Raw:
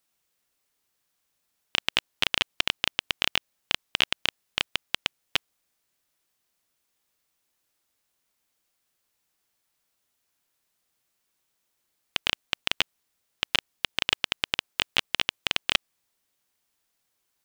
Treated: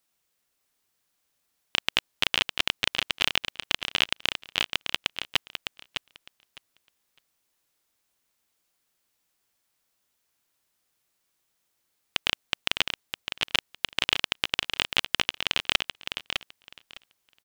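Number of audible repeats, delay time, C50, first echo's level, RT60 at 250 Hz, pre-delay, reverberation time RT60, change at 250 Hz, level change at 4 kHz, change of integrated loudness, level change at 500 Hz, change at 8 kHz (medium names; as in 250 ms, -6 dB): 2, 607 ms, no reverb, -7.0 dB, no reverb, no reverb, no reverb, +1.0 dB, +1.0 dB, 0.0 dB, +1.0 dB, +1.0 dB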